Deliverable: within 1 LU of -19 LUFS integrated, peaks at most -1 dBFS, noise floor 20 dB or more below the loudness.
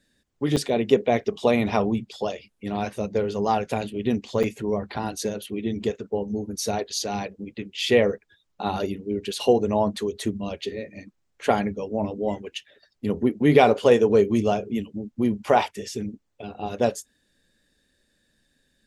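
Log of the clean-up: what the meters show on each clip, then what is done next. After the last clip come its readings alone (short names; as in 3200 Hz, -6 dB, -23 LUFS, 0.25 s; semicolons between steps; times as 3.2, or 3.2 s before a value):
dropouts 2; longest dropout 6.2 ms; loudness -24.5 LUFS; peak -2.5 dBFS; loudness target -19.0 LUFS
-> interpolate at 0.56/4.43, 6.2 ms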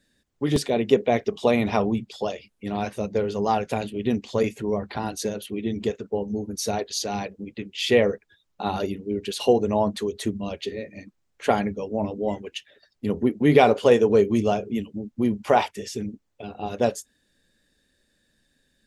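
dropouts 0; loudness -24.5 LUFS; peak -2.5 dBFS; loudness target -19.0 LUFS
-> gain +5.5 dB; limiter -1 dBFS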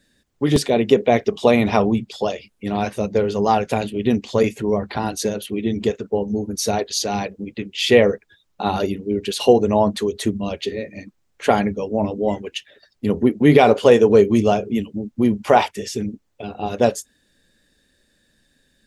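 loudness -19.5 LUFS; peak -1.0 dBFS; noise floor -66 dBFS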